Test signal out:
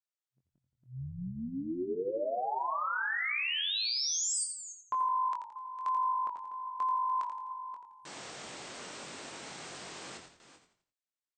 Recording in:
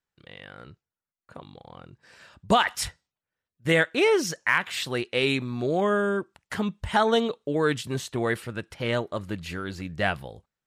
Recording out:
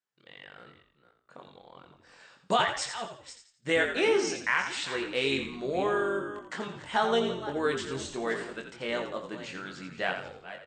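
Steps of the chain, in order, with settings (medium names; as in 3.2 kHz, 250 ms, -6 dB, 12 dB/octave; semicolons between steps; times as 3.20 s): chunks repeated in reverse 278 ms, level -12.5 dB; tone controls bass -8 dB, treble +1 dB; FFT band-pass 120–8800 Hz; doubling 22 ms -5.5 dB; frequency-shifting echo 85 ms, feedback 37%, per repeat -50 Hz, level -8 dB; trim -5.5 dB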